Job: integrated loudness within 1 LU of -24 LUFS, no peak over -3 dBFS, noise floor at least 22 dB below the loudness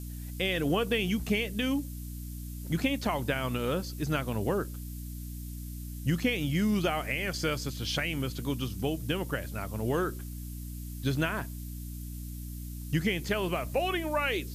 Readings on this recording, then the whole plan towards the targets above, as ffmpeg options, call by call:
hum 60 Hz; highest harmonic 300 Hz; hum level -37 dBFS; noise floor -40 dBFS; noise floor target -54 dBFS; loudness -32.0 LUFS; peak level -16.0 dBFS; loudness target -24.0 LUFS
-> -af "bandreject=f=60:t=h:w=6,bandreject=f=120:t=h:w=6,bandreject=f=180:t=h:w=6,bandreject=f=240:t=h:w=6,bandreject=f=300:t=h:w=6"
-af "afftdn=nr=14:nf=-40"
-af "volume=2.51"

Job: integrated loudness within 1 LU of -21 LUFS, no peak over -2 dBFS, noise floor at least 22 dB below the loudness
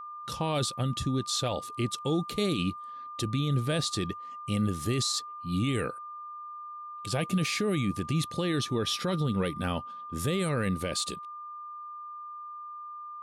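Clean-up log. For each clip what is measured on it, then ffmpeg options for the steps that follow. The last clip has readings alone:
steady tone 1.2 kHz; tone level -39 dBFS; loudness -30.5 LUFS; peak level -19.0 dBFS; loudness target -21.0 LUFS
-> -af "bandreject=f=1200:w=30"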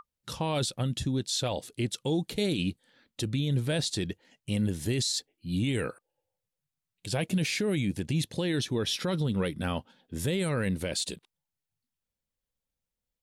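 steady tone not found; loudness -30.5 LUFS; peak level -19.5 dBFS; loudness target -21.0 LUFS
-> -af "volume=2.99"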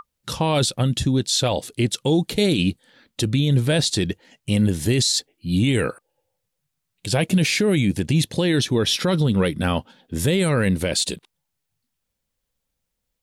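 loudness -21.0 LUFS; peak level -10.0 dBFS; noise floor -79 dBFS

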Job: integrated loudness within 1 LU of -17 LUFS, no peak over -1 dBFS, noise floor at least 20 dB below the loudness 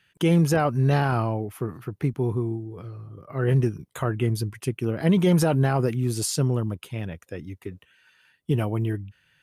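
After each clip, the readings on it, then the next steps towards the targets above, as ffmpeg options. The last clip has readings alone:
loudness -24.5 LUFS; peak level -11.5 dBFS; loudness target -17.0 LUFS
-> -af "volume=2.37"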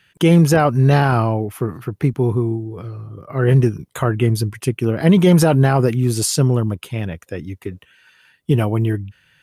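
loudness -17.0 LUFS; peak level -4.0 dBFS; noise floor -59 dBFS

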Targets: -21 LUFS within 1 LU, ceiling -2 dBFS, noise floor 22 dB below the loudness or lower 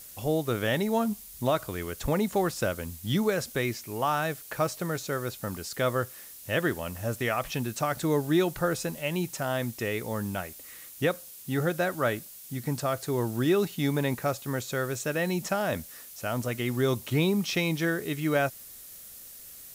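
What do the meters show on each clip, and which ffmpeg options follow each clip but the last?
noise floor -47 dBFS; noise floor target -52 dBFS; loudness -29.5 LUFS; peak level -14.5 dBFS; loudness target -21.0 LUFS
-> -af "afftdn=nr=6:nf=-47"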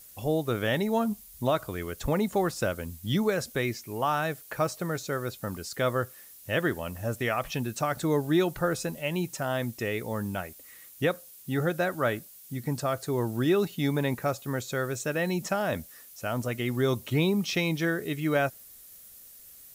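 noise floor -50 dBFS; noise floor target -52 dBFS
-> -af "afftdn=nr=6:nf=-50"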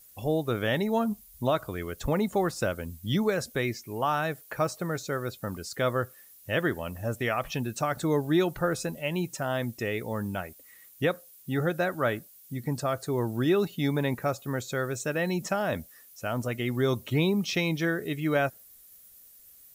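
noise floor -54 dBFS; loudness -29.5 LUFS; peak level -14.5 dBFS; loudness target -21.0 LUFS
-> -af "volume=2.66"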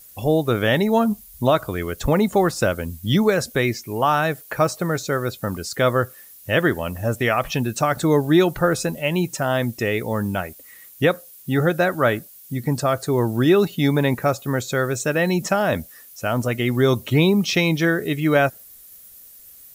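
loudness -21.0 LUFS; peak level -6.0 dBFS; noise floor -45 dBFS

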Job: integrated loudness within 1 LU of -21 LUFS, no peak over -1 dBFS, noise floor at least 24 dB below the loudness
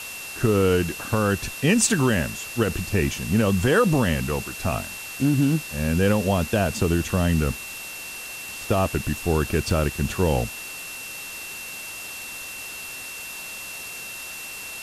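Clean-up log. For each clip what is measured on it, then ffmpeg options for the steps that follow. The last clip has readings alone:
steady tone 2.7 kHz; tone level -36 dBFS; noise floor -36 dBFS; noise floor target -49 dBFS; loudness -24.5 LUFS; peak level -7.5 dBFS; loudness target -21.0 LUFS
-> -af "bandreject=f=2700:w=30"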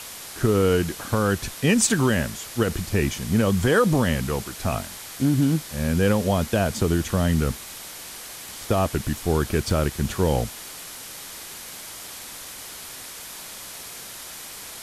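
steady tone not found; noise floor -39 dBFS; noise floor target -47 dBFS
-> -af "afftdn=nr=8:nf=-39"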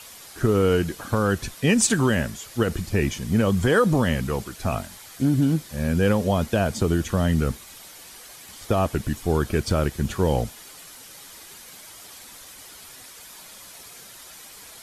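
noise floor -44 dBFS; noise floor target -47 dBFS
-> -af "afftdn=nr=6:nf=-44"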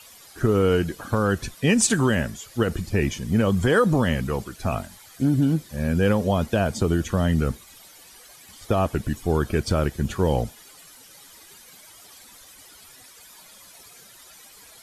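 noise floor -49 dBFS; loudness -23.0 LUFS; peak level -7.5 dBFS; loudness target -21.0 LUFS
-> -af "volume=1.26"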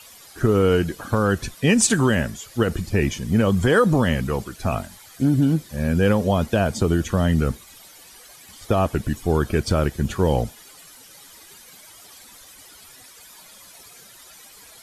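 loudness -21.0 LUFS; peak level -5.5 dBFS; noise floor -47 dBFS

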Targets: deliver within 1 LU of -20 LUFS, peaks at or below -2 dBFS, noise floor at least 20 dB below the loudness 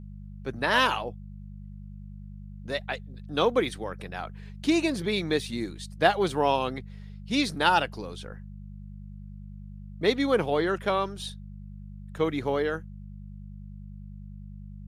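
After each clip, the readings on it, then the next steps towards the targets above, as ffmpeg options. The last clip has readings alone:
hum 50 Hz; highest harmonic 200 Hz; hum level -39 dBFS; loudness -27.5 LUFS; peak level -5.5 dBFS; loudness target -20.0 LUFS
-> -af "bandreject=f=50:t=h:w=4,bandreject=f=100:t=h:w=4,bandreject=f=150:t=h:w=4,bandreject=f=200:t=h:w=4"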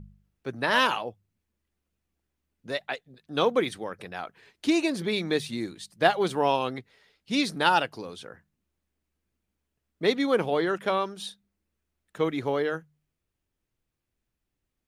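hum not found; loudness -27.0 LUFS; peak level -5.5 dBFS; loudness target -20.0 LUFS
-> -af "volume=2.24,alimiter=limit=0.794:level=0:latency=1"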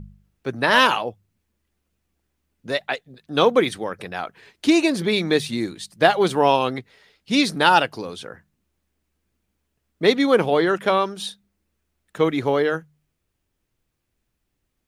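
loudness -20.5 LUFS; peak level -2.0 dBFS; noise floor -76 dBFS

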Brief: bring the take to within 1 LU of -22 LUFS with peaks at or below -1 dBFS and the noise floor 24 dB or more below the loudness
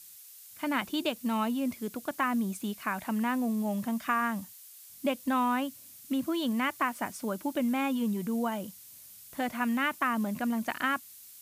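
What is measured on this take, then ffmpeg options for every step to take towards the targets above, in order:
noise floor -51 dBFS; noise floor target -55 dBFS; loudness -31.0 LUFS; peak level -15.0 dBFS; loudness target -22.0 LUFS
-> -af "afftdn=nr=6:nf=-51"
-af "volume=2.82"

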